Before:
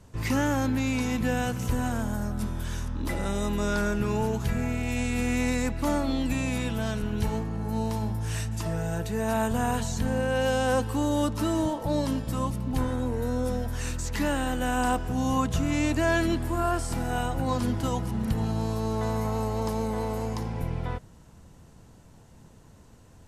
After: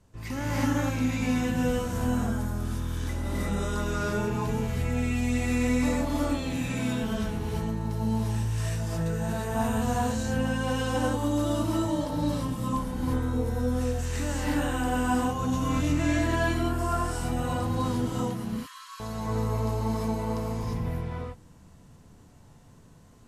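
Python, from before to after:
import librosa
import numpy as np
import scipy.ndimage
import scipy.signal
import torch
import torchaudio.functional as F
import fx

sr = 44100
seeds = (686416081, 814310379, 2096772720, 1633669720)

y = fx.brickwall_highpass(x, sr, low_hz=960.0, at=(18.29, 19.0))
y = fx.rev_gated(y, sr, seeds[0], gate_ms=380, shape='rising', drr_db=-7.0)
y = y * 10.0 ** (-9.0 / 20.0)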